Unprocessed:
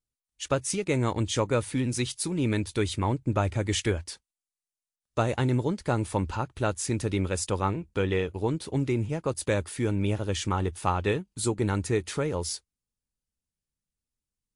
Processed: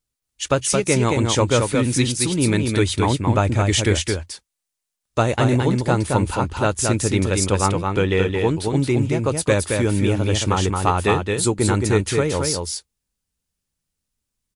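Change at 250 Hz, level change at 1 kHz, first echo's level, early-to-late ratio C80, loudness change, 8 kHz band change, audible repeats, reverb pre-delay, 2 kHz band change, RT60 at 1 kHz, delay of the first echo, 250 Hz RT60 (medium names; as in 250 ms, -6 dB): +8.5 dB, +9.0 dB, -4.0 dB, no reverb, +9.0 dB, +11.0 dB, 1, no reverb, +9.5 dB, no reverb, 221 ms, no reverb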